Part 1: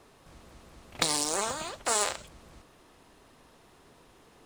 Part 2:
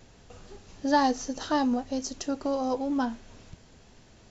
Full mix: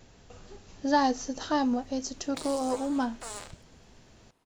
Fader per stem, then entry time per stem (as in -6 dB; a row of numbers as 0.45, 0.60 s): -13.5, -1.0 dB; 1.35, 0.00 s